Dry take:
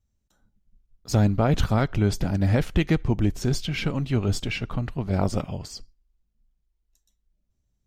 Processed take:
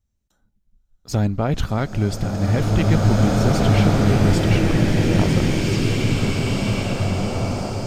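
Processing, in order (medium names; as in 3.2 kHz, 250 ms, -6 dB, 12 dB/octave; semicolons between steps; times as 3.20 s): swelling reverb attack 2320 ms, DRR -6 dB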